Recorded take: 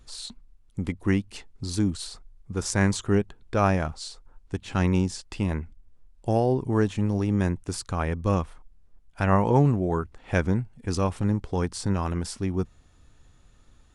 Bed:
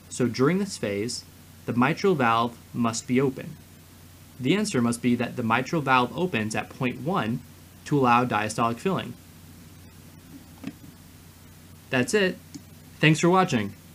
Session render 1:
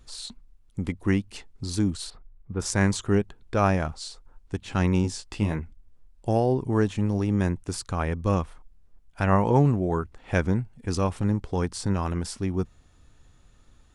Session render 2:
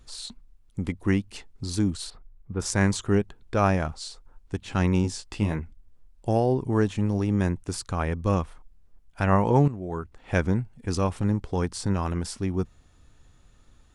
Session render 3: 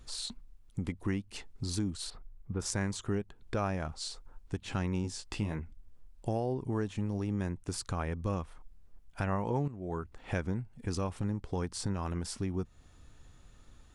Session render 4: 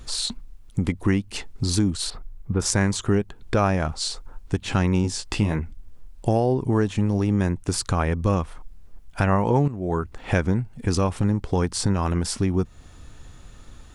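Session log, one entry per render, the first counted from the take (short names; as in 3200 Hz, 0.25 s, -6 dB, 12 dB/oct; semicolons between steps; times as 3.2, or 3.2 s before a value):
2.1–2.6 air absorption 430 m; 5.02–5.59 doubler 19 ms -6 dB
9.68–10.36 fade in, from -13.5 dB
compressor 2.5:1, threshold -34 dBFS, peak gain reduction 13 dB
gain +12 dB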